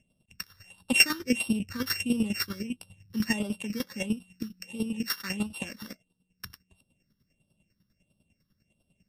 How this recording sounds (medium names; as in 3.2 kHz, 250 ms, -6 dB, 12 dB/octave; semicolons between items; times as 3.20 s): a buzz of ramps at a fixed pitch in blocks of 16 samples; chopped level 10 Hz, depth 65%, duty 25%; phasing stages 6, 1.5 Hz, lowest notch 670–1900 Hz; MP3